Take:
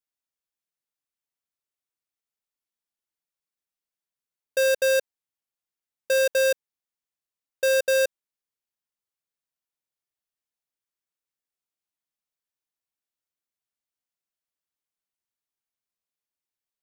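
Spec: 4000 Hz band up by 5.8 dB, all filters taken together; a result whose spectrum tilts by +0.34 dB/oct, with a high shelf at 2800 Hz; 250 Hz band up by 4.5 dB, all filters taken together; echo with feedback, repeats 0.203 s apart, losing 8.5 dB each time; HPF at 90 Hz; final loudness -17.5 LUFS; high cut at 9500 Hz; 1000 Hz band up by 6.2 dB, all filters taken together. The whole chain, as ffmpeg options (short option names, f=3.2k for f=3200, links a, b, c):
-af "highpass=90,lowpass=9.5k,equalizer=f=250:t=o:g=6,equalizer=f=1k:t=o:g=6,highshelf=f=2.8k:g=3,equalizer=f=4k:t=o:g=4,aecho=1:1:203|406|609|812:0.376|0.143|0.0543|0.0206,volume=3dB"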